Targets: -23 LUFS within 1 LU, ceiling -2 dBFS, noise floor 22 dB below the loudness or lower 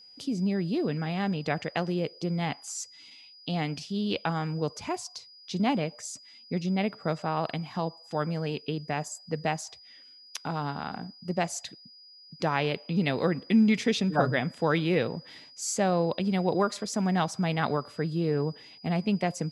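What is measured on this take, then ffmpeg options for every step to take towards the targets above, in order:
steady tone 4.9 kHz; tone level -50 dBFS; loudness -29.5 LUFS; peak level -10.0 dBFS; loudness target -23.0 LUFS
-> -af "bandreject=f=4900:w=30"
-af "volume=2.11"

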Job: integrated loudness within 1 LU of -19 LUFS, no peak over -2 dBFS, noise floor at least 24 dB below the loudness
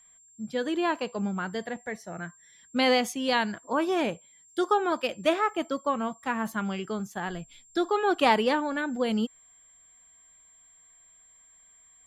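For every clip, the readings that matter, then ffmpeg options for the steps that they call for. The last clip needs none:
steady tone 7.4 kHz; tone level -55 dBFS; loudness -28.0 LUFS; peak level -9.0 dBFS; loudness target -19.0 LUFS
-> -af "bandreject=f=7400:w=30"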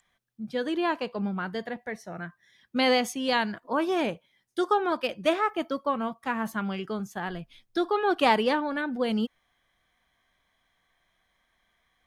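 steady tone not found; loudness -28.0 LUFS; peak level -9.0 dBFS; loudness target -19.0 LUFS
-> -af "volume=2.82,alimiter=limit=0.794:level=0:latency=1"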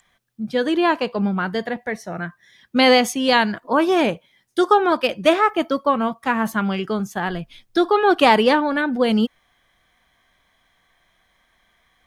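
loudness -19.5 LUFS; peak level -2.0 dBFS; noise floor -64 dBFS

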